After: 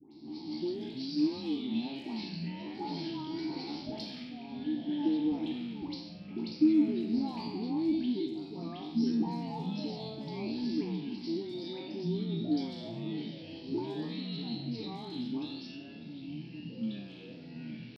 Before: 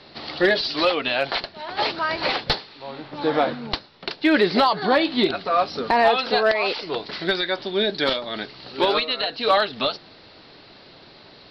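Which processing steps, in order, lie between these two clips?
peak hold with a decay on every bin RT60 0.40 s
drawn EQ curve 120 Hz 0 dB, 400 Hz +3 dB, 1,300 Hz −13 dB, 2,400 Hz −15 dB, 5,400 Hz +9 dB
tempo change 0.64×
downward compressor, threshold −23 dBFS, peak gain reduction 12 dB
formant filter u
bass and treble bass +9 dB, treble +14 dB
all-pass dispersion highs, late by 121 ms, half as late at 1,400 Hz
delay with pitch and tempo change per echo 126 ms, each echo −5 semitones, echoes 2, each echo −6 dB

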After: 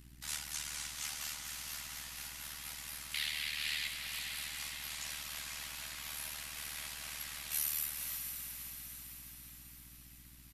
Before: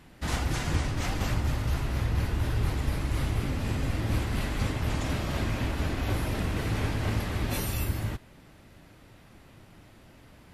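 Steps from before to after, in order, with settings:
high-pass filter 740 Hz 12 dB per octave
first difference
comb filter 6.2 ms, depth 73%
0:03.14–0:03.88: flat-topped bell 2,800 Hz +13.5 dB
mains hum 60 Hz, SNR 12 dB
amplitude modulation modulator 75 Hz, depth 65%
feedback delay with all-pass diffusion 509 ms, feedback 58%, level −5.5 dB
level +2.5 dB

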